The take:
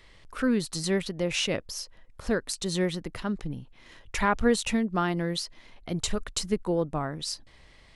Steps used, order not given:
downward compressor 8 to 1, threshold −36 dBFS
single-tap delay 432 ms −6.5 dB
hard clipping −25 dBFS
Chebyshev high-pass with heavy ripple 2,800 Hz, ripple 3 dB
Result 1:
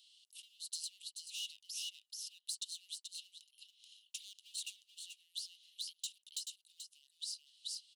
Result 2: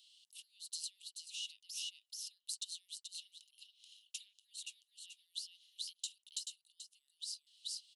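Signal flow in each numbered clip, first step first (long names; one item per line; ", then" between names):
hard clipping, then single-tap delay, then downward compressor, then Chebyshev high-pass with heavy ripple
single-tap delay, then downward compressor, then Chebyshev high-pass with heavy ripple, then hard clipping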